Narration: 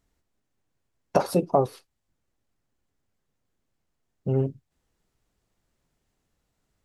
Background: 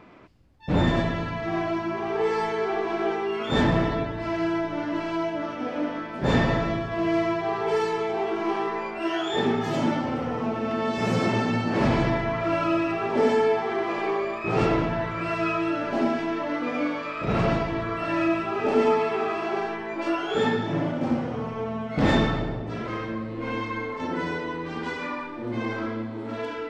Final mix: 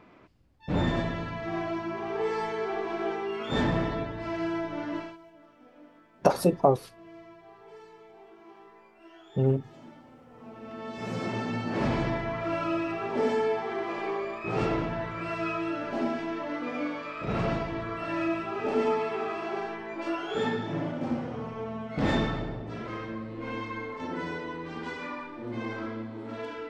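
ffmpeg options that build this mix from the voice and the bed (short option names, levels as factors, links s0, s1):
-filter_complex "[0:a]adelay=5100,volume=1[s0];[1:a]volume=5.31,afade=t=out:st=4.95:d=0.22:silence=0.1,afade=t=in:st=10.29:d=1.47:silence=0.105925[s1];[s0][s1]amix=inputs=2:normalize=0"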